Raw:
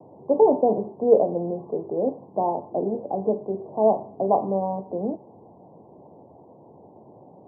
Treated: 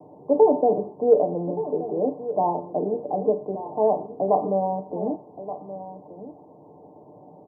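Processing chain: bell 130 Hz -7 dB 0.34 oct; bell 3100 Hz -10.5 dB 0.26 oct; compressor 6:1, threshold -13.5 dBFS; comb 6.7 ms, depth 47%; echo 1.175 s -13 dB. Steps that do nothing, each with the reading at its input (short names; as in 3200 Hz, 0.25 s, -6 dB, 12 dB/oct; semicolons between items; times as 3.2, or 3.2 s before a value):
bell 3100 Hz: input band ends at 1100 Hz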